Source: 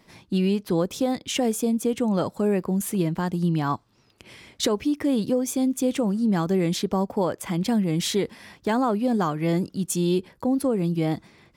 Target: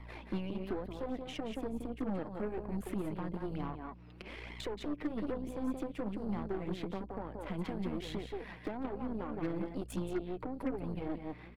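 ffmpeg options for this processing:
-filter_complex "[0:a]acrossover=split=160|900[a][b][c];[a]acrusher=samples=10:mix=1:aa=0.000001[d];[d][b][c]amix=inputs=3:normalize=0,firequalizer=gain_entry='entry(130,0);entry(280,9);entry(420,11);entry(2500,8);entry(5900,-12);entry(8400,-8)':delay=0.05:min_phase=1,acompressor=threshold=-31dB:ratio=3,aecho=1:1:176:0.501,aeval=exprs='val(0)+0.00708*(sin(2*PI*60*n/s)+sin(2*PI*2*60*n/s)/2+sin(2*PI*3*60*n/s)/3+sin(2*PI*4*60*n/s)/4+sin(2*PI*5*60*n/s)/5)':c=same,acrossover=split=360[e][f];[f]acompressor=threshold=-39dB:ratio=3[g];[e][g]amix=inputs=2:normalize=0,flanger=delay=0.9:depth=5.7:regen=12:speed=1.1:shape=sinusoidal,aeval=exprs='0.075*(cos(1*acos(clip(val(0)/0.075,-1,1)))-cos(1*PI/2))+0.0106*(cos(6*acos(clip(val(0)/0.075,-1,1)))-cos(6*PI/2))':c=same,volume=-4.5dB"

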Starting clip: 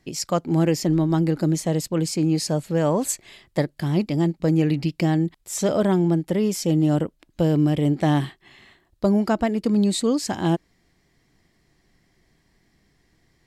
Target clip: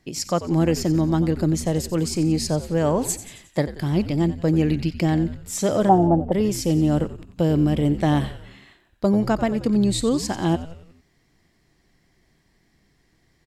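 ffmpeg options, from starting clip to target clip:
-filter_complex "[0:a]asettb=1/sr,asplit=3[a][b][c];[a]atrim=end=5.894[d];[b]atrim=start=5.89:end=6.32,asetpts=PTS-STARTPTS,afade=t=in:d=0.004:c=qsin,afade=t=out:st=0.426:d=0.004:c=qsin,lowpass=f=780:t=q:w=7.6[e];[c]atrim=start=6.316[f];[d][e]acrossfade=d=0.004:c1=hsin:c2=qsin[g];[g][f]acrossfade=d=0.004:c1=qsin:c2=hsin,asplit=6[h][i][j][k][l][m];[i]adelay=90,afreqshift=-84,volume=-13.5dB[n];[j]adelay=180,afreqshift=-168,volume=-19.2dB[o];[k]adelay=270,afreqshift=-252,volume=-24.9dB[p];[l]adelay=360,afreqshift=-336,volume=-30.5dB[q];[m]adelay=450,afreqshift=-420,volume=-36.2dB[r];[h][n][o][p][q][r]amix=inputs=6:normalize=0"

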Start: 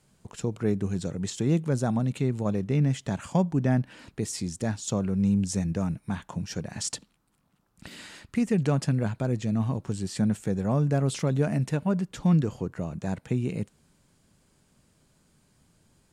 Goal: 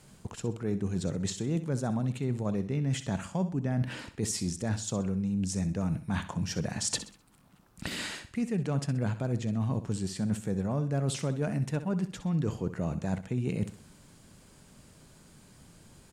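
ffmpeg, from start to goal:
-af "areverse,acompressor=threshold=-37dB:ratio=6,areverse,aecho=1:1:64|128|192|256:0.237|0.0854|0.0307|0.0111,volume=8.5dB"

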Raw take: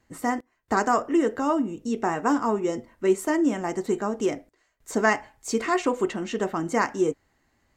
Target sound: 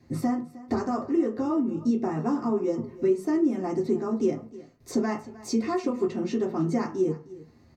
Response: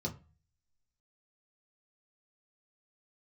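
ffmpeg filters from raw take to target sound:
-filter_complex "[0:a]acompressor=threshold=-41dB:ratio=2.5,aecho=1:1:310:0.119[a];[1:a]atrim=start_sample=2205[b];[a][b]afir=irnorm=-1:irlink=0,volume=3.5dB"

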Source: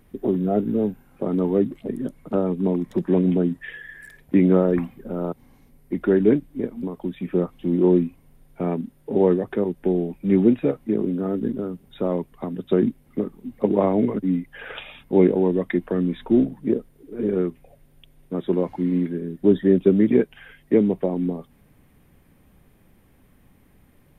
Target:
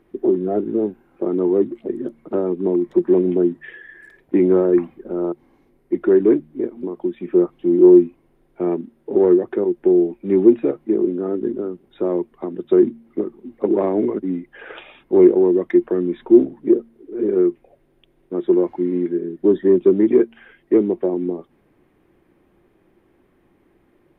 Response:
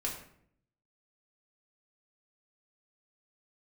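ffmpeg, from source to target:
-filter_complex "[0:a]asplit=2[a][b];[b]highpass=f=720:p=1,volume=13dB,asoftclip=type=tanh:threshold=-4dB[c];[a][c]amix=inputs=2:normalize=0,lowpass=f=1.2k:p=1,volume=-6dB,equalizer=f=350:t=o:w=0.36:g=14.5,bandreject=f=76.46:t=h:w=4,bandreject=f=152.92:t=h:w=4,bandreject=f=229.38:t=h:w=4,volume=-4.5dB"

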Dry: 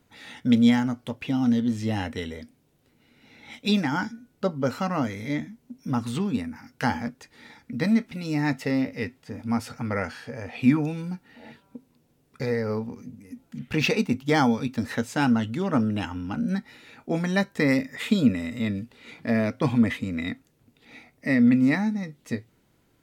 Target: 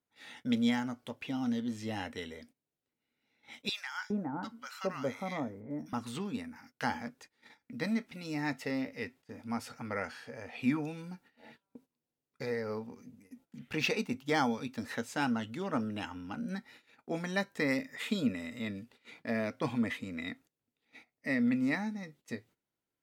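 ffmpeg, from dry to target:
-filter_complex "[0:a]agate=range=-16dB:threshold=-47dB:ratio=16:detection=peak,lowshelf=f=210:g=-10.5,asettb=1/sr,asplit=3[a][b][c];[a]atrim=end=3.694[d];[b]atrim=start=3.69:end=5.93,asetpts=PTS-STARTPTS,afade=t=in:d=0.004:c=qsin,afade=t=out:st=2.236:d=0.004:c=qsin,acrossover=split=1100[e][f];[e]adelay=410[g];[g][f]amix=inputs=2:normalize=0,atrim=end_sample=98784[h];[c]atrim=start=5.926[i];[d][h]acrossfade=d=0.004:c1=hsin:c2=qsin[j];[j][i]acrossfade=d=0.004:c1=qsin:c2=hsin,volume=-6.5dB"

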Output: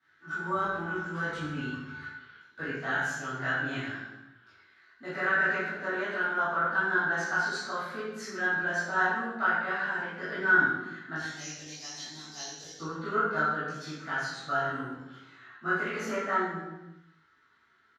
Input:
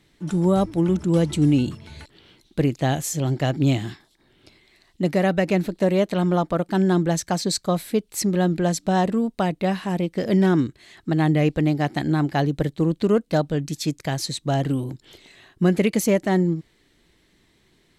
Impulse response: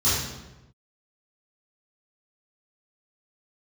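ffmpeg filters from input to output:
-filter_complex "[0:a]asetnsamples=n=441:p=0,asendcmd='11.16 bandpass f 5700;12.79 bandpass f 1400',bandpass=f=1.5k:t=q:w=11:csg=0,asplit=2[a][b];[b]adelay=19,volume=-4dB[c];[a][c]amix=inputs=2:normalize=0[d];[1:a]atrim=start_sample=2205[e];[d][e]afir=irnorm=-1:irlink=0"

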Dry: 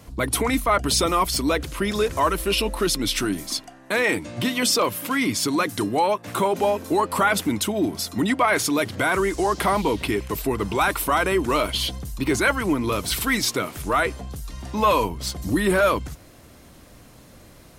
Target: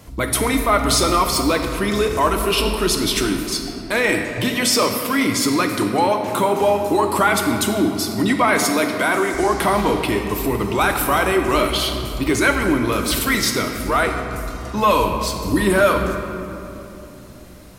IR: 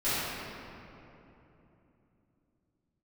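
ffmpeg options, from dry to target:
-filter_complex "[0:a]asettb=1/sr,asplit=3[a][b][c];[a]atrim=end=8.604[d];[b]atrim=start=8.6:end=9.34,asetpts=PTS-STARTPTS,afade=t=in:d=0.004:c=qsin,afade=t=out:st=0.736:d=0.004:c=qsin,highpass=230[e];[c]atrim=start=9.336[f];[d][e]acrossfade=d=0.004:c1=hsin:c2=qsin[g];[g][f]acrossfade=d=0.004:c1=qsin:c2=hsin,asplit=2[h][i];[i]highshelf=f=5.5k:g=7.5[j];[1:a]atrim=start_sample=2205[k];[j][k]afir=irnorm=-1:irlink=0,volume=-16dB[l];[h][l]amix=inputs=2:normalize=0,volume=1.5dB"

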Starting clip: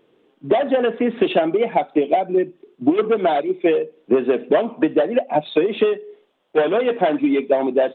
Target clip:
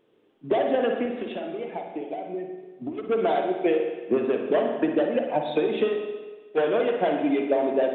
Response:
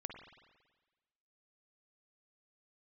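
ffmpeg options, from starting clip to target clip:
-filter_complex "[0:a]asettb=1/sr,asplit=3[a][b][c];[a]atrim=end=1.054[d];[b]atrim=start=1.05:end=3.09,asetpts=PTS-STARTPTS,afade=t=in:d=0.004:c=qsin,afade=t=out:st=2.036:d=0.004:c=qsin,acompressor=threshold=-24dB:ratio=6[e];[c]atrim=start=3.086[f];[d][e]acrossfade=d=0.004:c1=hsin:c2=qsin[g];[g][f]acrossfade=d=0.004:c1=qsin:c2=hsin[h];[1:a]atrim=start_sample=2205[i];[h][i]afir=irnorm=-1:irlink=0,volume=-2.5dB"

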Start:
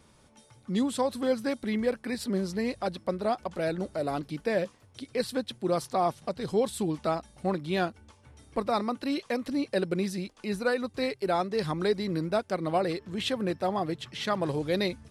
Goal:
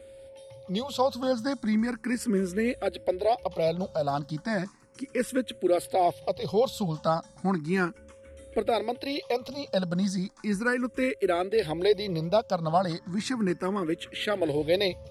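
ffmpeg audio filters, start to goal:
-filter_complex "[0:a]aeval=exprs='val(0)+0.00316*sin(2*PI*540*n/s)':c=same,asplit=2[a][b];[b]afreqshift=0.35[c];[a][c]amix=inputs=2:normalize=1,volume=5dB"

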